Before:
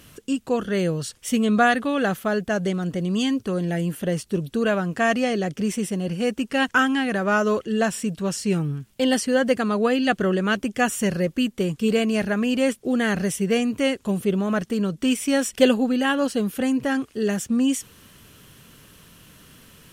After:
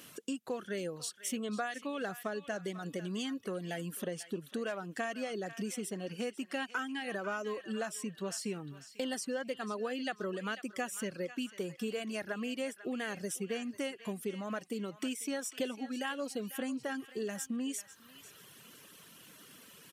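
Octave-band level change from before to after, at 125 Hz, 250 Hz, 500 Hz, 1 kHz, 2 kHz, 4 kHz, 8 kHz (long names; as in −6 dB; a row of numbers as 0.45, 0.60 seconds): −18.5, −17.0, −14.5, −15.5, −15.0, −13.0, −9.5 decibels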